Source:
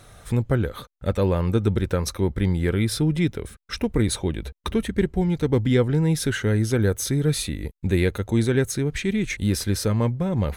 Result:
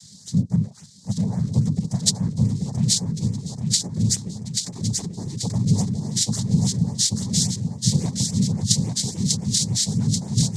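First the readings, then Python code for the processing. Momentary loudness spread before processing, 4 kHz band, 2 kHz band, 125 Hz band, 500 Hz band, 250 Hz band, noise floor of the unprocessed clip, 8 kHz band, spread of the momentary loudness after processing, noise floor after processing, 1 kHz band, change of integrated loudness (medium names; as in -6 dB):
6 LU, +8.0 dB, under -15 dB, +1.0 dB, -16.5 dB, -0.5 dB, -50 dBFS, +10.5 dB, 6 LU, -46 dBFS, -8.0 dB, +1.0 dB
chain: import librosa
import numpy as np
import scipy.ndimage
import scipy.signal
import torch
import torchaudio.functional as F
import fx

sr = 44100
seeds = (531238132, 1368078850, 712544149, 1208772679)

p1 = fx.curve_eq(x, sr, hz=(130.0, 190.0, 450.0, 3100.0, 5200.0), db=(0, -22, -20, -28, 10))
p2 = fx.noise_vocoder(p1, sr, seeds[0], bands=6)
p3 = fx.filter_lfo_notch(p2, sr, shape='saw_up', hz=3.6, low_hz=340.0, high_hz=4800.0, q=1.3)
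p4 = fx.rider(p3, sr, range_db=5, speed_s=0.5)
p5 = p4 + fx.echo_feedback(p4, sr, ms=835, feedback_pct=45, wet_db=-4, dry=0)
y = p5 * 10.0 ** (4.0 / 20.0)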